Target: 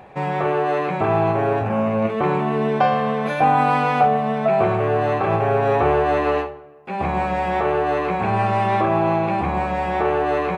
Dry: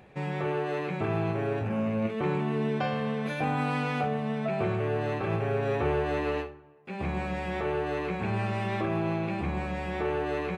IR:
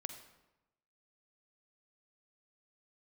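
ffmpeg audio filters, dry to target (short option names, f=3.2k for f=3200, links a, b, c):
-filter_complex "[0:a]equalizer=f=860:w=1.1:g=12,bandreject=f=890:w=24,asplit=2[a][b];[1:a]atrim=start_sample=2205[c];[b][c]afir=irnorm=-1:irlink=0,volume=-8dB[d];[a][d]amix=inputs=2:normalize=0,volume=3dB"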